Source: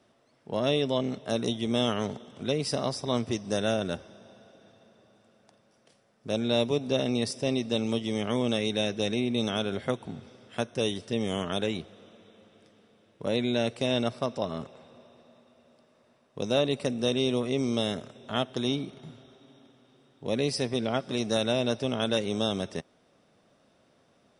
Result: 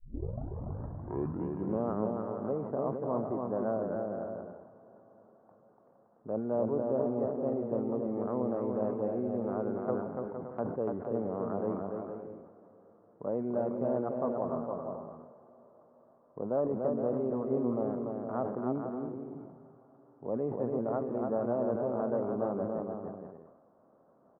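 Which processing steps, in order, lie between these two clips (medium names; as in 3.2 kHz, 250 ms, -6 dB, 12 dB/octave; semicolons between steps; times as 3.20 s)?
tape start-up on the opening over 1.92 s; steep low-pass 1.2 kHz 36 dB/octave; bass shelf 160 Hz -12 dB; in parallel at -2 dB: compression, threshold -44 dBFS, peak gain reduction 20 dB; on the sum: vibrato 2.8 Hz 13 cents; on a send: bouncing-ball echo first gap 290 ms, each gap 0.6×, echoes 5; on the sum: decay stretcher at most 60 dB/s; trim -4.5 dB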